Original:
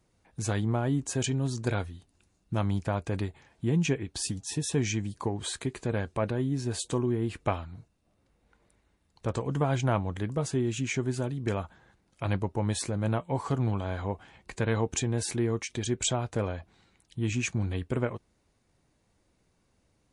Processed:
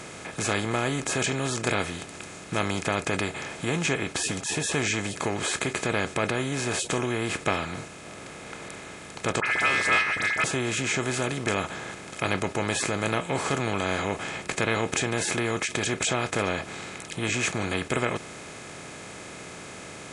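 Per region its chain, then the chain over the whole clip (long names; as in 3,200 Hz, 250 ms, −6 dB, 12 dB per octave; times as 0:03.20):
0:09.40–0:10.44: hollow resonant body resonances 230/600/2,000 Hz, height 16 dB, ringing for 90 ms + ring modulation 1,900 Hz + all-pass dispersion highs, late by 61 ms, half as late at 2,200 Hz
whole clip: compressor on every frequency bin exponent 0.4; low-shelf EQ 210 Hz −8 dB; level −1.5 dB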